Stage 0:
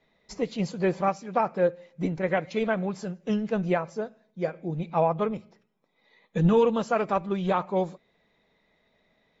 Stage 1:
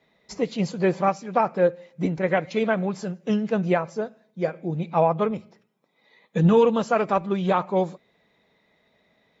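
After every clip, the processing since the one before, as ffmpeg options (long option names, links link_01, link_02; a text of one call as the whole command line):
ffmpeg -i in.wav -af "highpass=63,volume=3.5dB" out.wav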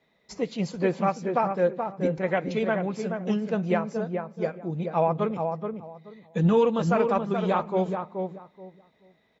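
ffmpeg -i in.wav -filter_complex "[0:a]asplit=2[link_01][link_02];[link_02]adelay=428,lowpass=frequency=1200:poles=1,volume=-4.5dB,asplit=2[link_03][link_04];[link_04]adelay=428,lowpass=frequency=1200:poles=1,volume=0.22,asplit=2[link_05][link_06];[link_06]adelay=428,lowpass=frequency=1200:poles=1,volume=0.22[link_07];[link_01][link_03][link_05][link_07]amix=inputs=4:normalize=0,volume=-3.5dB" out.wav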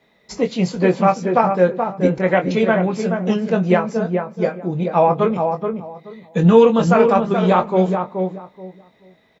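ffmpeg -i in.wav -filter_complex "[0:a]asplit=2[link_01][link_02];[link_02]adelay=22,volume=-7dB[link_03];[link_01][link_03]amix=inputs=2:normalize=0,volume=8.5dB" out.wav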